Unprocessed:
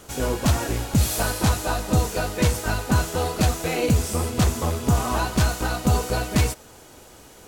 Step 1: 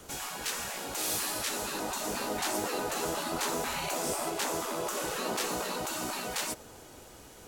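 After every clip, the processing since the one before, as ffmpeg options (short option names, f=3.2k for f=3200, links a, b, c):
-filter_complex "[0:a]afftfilt=real='re*lt(hypot(re,im),0.1)':imag='im*lt(hypot(re,im),0.1)':win_size=1024:overlap=0.75,acrossover=split=180|1000|2500[a][b][c][d];[b]dynaudnorm=f=200:g=17:m=10.5dB[e];[a][e][c][d]amix=inputs=4:normalize=0,volume=-4dB"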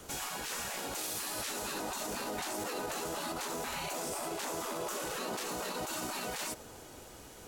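-af "alimiter=level_in=4.5dB:limit=-24dB:level=0:latency=1:release=37,volume=-4.5dB"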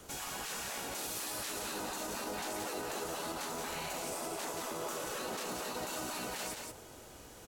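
-af "aecho=1:1:177:0.596,volume=-3dB"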